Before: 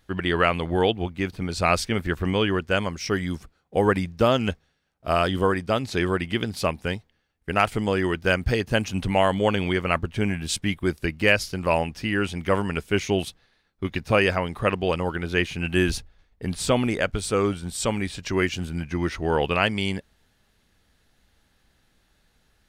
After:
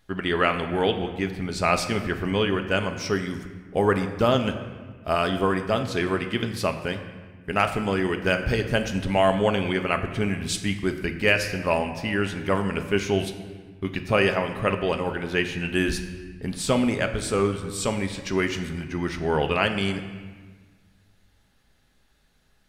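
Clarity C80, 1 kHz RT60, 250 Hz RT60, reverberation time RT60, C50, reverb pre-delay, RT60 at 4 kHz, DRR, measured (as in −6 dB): 10.5 dB, 1.5 s, 1.9 s, 1.5 s, 9.5 dB, 5 ms, 1.1 s, 6.0 dB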